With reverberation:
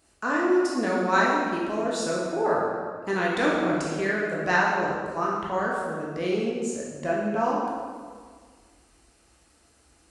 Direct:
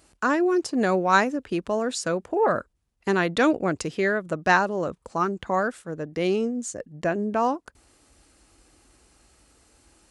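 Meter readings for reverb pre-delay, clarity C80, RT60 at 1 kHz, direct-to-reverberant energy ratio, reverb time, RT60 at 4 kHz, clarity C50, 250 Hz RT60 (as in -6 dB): 12 ms, 2.0 dB, 1.7 s, -5.5 dB, 1.7 s, 1.3 s, -0.5 dB, 1.8 s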